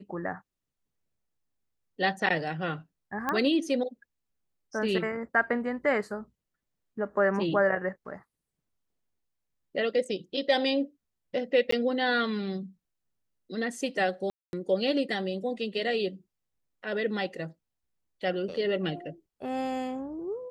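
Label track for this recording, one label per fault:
3.290000	3.290000	pop -15 dBFS
11.710000	11.720000	gap 14 ms
14.300000	14.530000	gap 0.231 s

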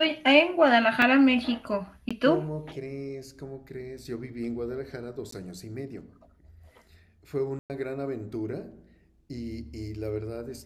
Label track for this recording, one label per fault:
1.020000	1.020000	gap 2.9 ms
2.090000	2.110000	gap 16 ms
5.310000	5.320000	gap 14 ms
7.590000	7.700000	gap 0.108 s

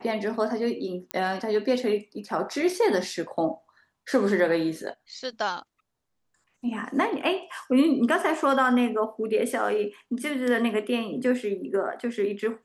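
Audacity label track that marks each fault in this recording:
1.110000	1.110000	pop -14 dBFS

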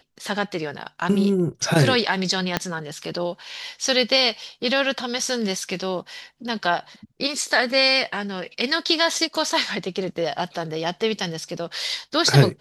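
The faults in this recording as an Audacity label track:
2.570000	2.570000	pop -5 dBFS

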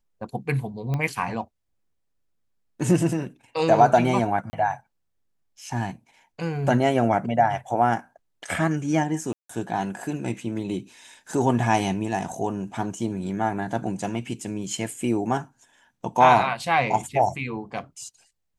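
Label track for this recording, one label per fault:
0.940000	0.940000	pop -16 dBFS
4.500000	4.530000	gap 30 ms
9.330000	9.490000	gap 0.164 s

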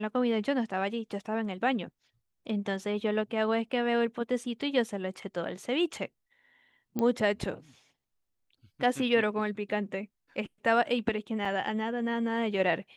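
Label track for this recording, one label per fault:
6.990000	6.990000	pop -18 dBFS
11.450000	11.450000	gap 3.6 ms

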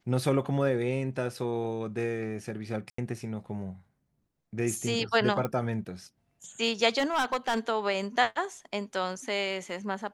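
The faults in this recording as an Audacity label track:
2.900000	2.980000	gap 84 ms
5.450000	5.450000	pop -18 dBFS
6.980000	7.590000	clipped -22.5 dBFS

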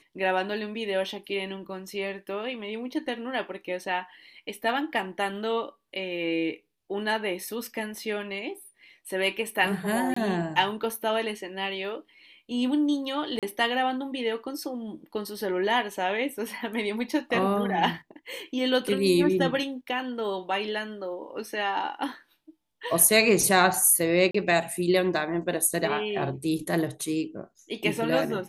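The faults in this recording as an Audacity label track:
10.140000	10.160000	gap 24 ms
13.390000	13.430000	gap 37 ms
24.310000	24.340000	gap 34 ms

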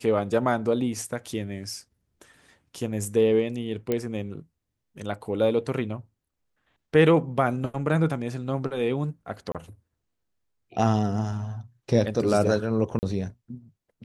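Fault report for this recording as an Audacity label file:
3.920000	3.920000	pop -13 dBFS
9.520000	9.550000	gap 27 ms
12.990000	13.030000	gap 39 ms

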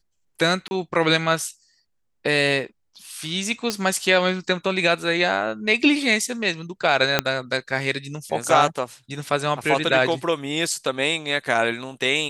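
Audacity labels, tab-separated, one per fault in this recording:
0.680000	0.710000	gap 30 ms
3.700000	3.700000	pop -8 dBFS
7.190000	7.190000	pop -2 dBFS

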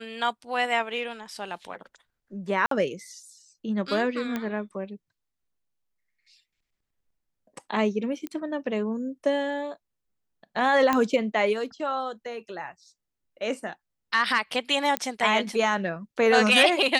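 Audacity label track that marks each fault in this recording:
2.660000	2.710000	gap 53 ms
4.360000	4.360000	pop -16 dBFS
8.270000	8.270000	pop -20 dBFS
10.930000	10.930000	pop -10 dBFS
14.970000	14.970000	pop -9 dBFS

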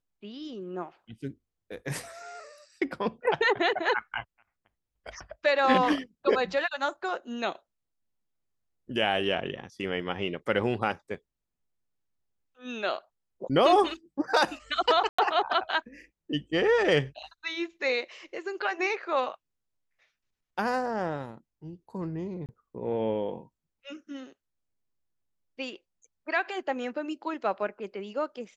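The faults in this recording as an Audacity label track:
15.090000	15.190000	gap 95 ms
22.460000	22.490000	gap 28 ms

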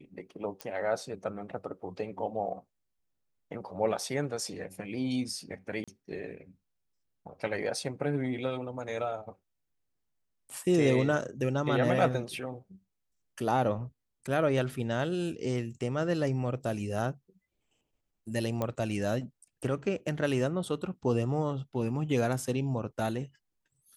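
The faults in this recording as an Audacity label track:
0.610000	0.610000	pop -21 dBFS
5.840000	5.880000	gap 36 ms
18.620000	18.620000	pop -18 dBFS

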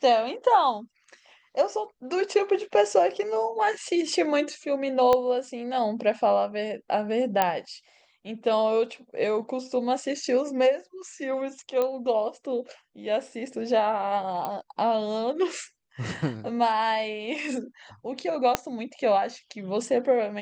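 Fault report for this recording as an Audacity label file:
5.130000	5.130000	pop -10 dBFS
7.420000	7.420000	pop -8 dBFS
11.820000	11.820000	pop -15 dBFS
14.450000	14.450000	pop -17 dBFS
18.550000	18.550000	pop -6 dBFS

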